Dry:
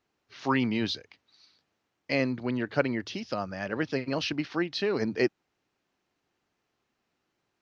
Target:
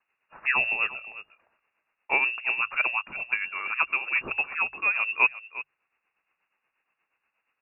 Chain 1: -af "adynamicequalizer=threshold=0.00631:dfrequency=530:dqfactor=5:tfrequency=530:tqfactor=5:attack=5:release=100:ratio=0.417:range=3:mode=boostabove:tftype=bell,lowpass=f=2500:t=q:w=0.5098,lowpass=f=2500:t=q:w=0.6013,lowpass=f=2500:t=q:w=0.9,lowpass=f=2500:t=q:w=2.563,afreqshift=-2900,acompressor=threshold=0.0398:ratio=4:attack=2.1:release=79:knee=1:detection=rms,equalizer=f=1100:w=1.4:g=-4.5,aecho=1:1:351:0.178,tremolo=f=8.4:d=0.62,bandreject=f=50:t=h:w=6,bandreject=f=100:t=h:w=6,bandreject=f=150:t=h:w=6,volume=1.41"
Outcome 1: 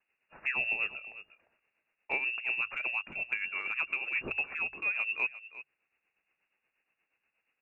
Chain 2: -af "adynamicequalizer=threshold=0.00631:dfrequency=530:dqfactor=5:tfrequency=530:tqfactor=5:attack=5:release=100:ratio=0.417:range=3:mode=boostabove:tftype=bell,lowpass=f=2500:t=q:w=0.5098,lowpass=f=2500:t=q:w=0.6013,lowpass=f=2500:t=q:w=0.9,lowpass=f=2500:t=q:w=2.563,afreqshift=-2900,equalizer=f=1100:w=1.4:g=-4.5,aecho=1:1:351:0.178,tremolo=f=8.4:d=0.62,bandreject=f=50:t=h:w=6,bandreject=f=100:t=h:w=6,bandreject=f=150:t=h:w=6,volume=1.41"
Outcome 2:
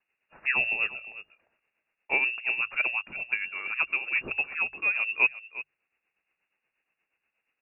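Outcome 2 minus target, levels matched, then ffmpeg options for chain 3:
1 kHz band -6.0 dB
-af "adynamicequalizer=threshold=0.00631:dfrequency=530:dqfactor=5:tfrequency=530:tqfactor=5:attack=5:release=100:ratio=0.417:range=3:mode=boostabove:tftype=bell,lowpass=f=2500:t=q:w=0.5098,lowpass=f=2500:t=q:w=0.6013,lowpass=f=2500:t=q:w=0.9,lowpass=f=2500:t=q:w=2.563,afreqshift=-2900,equalizer=f=1100:w=1.4:g=5,aecho=1:1:351:0.178,tremolo=f=8.4:d=0.62,bandreject=f=50:t=h:w=6,bandreject=f=100:t=h:w=6,bandreject=f=150:t=h:w=6,volume=1.41"

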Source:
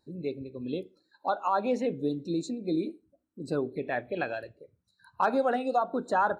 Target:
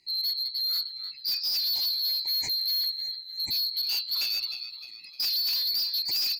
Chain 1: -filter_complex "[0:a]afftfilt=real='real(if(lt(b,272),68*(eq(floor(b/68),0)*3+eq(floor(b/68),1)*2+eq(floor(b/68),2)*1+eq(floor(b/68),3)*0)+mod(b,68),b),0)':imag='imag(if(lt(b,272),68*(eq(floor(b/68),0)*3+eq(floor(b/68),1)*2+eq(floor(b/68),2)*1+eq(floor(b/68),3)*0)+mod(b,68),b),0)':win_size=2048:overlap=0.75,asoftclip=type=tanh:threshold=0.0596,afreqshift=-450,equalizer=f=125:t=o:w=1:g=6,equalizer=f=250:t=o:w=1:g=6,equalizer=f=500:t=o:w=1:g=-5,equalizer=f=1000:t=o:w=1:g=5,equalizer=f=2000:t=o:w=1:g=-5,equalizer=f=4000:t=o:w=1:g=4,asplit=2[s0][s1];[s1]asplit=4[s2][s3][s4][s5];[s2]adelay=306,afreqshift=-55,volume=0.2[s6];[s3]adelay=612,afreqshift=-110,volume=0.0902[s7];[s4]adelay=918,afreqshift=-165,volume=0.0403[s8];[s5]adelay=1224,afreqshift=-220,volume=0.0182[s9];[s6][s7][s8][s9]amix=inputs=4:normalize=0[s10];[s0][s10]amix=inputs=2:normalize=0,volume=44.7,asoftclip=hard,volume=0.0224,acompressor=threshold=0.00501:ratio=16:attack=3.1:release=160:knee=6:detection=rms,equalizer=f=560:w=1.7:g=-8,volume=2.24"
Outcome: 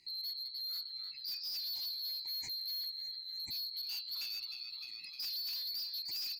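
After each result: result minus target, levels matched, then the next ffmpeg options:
compression: peak gain reduction +12 dB; 500 Hz band -4.5 dB
-filter_complex "[0:a]afftfilt=real='real(if(lt(b,272),68*(eq(floor(b/68),0)*3+eq(floor(b/68),1)*2+eq(floor(b/68),2)*1+eq(floor(b/68),3)*0)+mod(b,68),b),0)':imag='imag(if(lt(b,272),68*(eq(floor(b/68),0)*3+eq(floor(b/68),1)*2+eq(floor(b/68),2)*1+eq(floor(b/68),3)*0)+mod(b,68),b),0)':win_size=2048:overlap=0.75,asoftclip=type=tanh:threshold=0.0596,afreqshift=-450,equalizer=f=125:t=o:w=1:g=6,equalizer=f=250:t=o:w=1:g=6,equalizer=f=500:t=o:w=1:g=-5,equalizer=f=1000:t=o:w=1:g=5,equalizer=f=2000:t=o:w=1:g=-5,equalizer=f=4000:t=o:w=1:g=4,asplit=2[s0][s1];[s1]asplit=4[s2][s3][s4][s5];[s2]adelay=306,afreqshift=-55,volume=0.2[s6];[s3]adelay=612,afreqshift=-110,volume=0.0902[s7];[s4]adelay=918,afreqshift=-165,volume=0.0403[s8];[s5]adelay=1224,afreqshift=-220,volume=0.0182[s9];[s6][s7][s8][s9]amix=inputs=4:normalize=0[s10];[s0][s10]amix=inputs=2:normalize=0,volume=44.7,asoftclip=hard,volume=0.0224,equalizer=f=560:w=1.7:g=-8,volume=2.24"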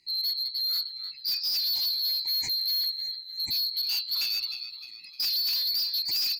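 500 Hz band -5.0 dB
-filter_complex "[0:a]afftfilt=real='real(if(lt(b,272),68*(eq(floor(b/68),0)*3+eq(floor(b/68),1)*2+eq(floor(b/68),2)*1+eq(floor(b/68),3)*0)+mod(b,68),b),0)':imag='imag(if(lt(b,272),68*(eq(floor(b/68),0)*3+eq(floor(b/68),1)*2+eq(floor(b/68),2)*1+eq(floor(b/68),3)*0)+mod(b,68),b),0)':win_size=2048:overlap=0.75,asoftclip=type=tanh:threshold=0.0596,afreqshift=-450,equalizer=f=125:t=o:w=1:g=6,equalizer=f=250:t=o:w=1:g=6,equalizer=f=500:t=o:w=1:g=-5,equalizer=f=1000:t=o:w=1:g=5,equalizer=f=2000:t=o:w=1:g=-5,equalizer=f=4000:t=o:w=1:g=4,asplit=2[s0][s1];[s1]asplit=4[s2][s3][s4][s5];[s2]adelay=306,afreqshift=-55,volume=0.2[s6];[s3]adelay=612,afreqshift=-110,volume=0.0902[s7];[s4]adelay=918,afreqshift=-165,volume=0.0403[s8];[s5]adelay=1224,afreqshift=-220,volume=0.0182[s9];[s6][s7][s8][s9]amix=inputs=4:normalize=0[s10];[s0][s10]amix=inputs=2:normalize=0,volume=44.7,asoftclip=hard,volume=0.0224,volume=2.24"

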